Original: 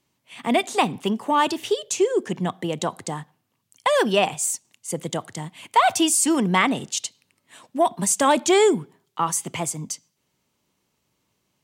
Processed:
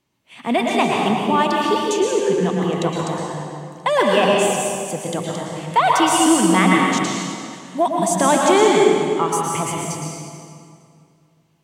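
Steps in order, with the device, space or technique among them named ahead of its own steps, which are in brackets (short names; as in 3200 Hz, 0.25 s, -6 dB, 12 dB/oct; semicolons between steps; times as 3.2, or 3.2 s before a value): swimming-pool hall (reverb RT60 2.3 s, pre-delay 0.106 s, DRR -2.5 dB; high shelf 4700 Hz -6 dB); gain +1 dB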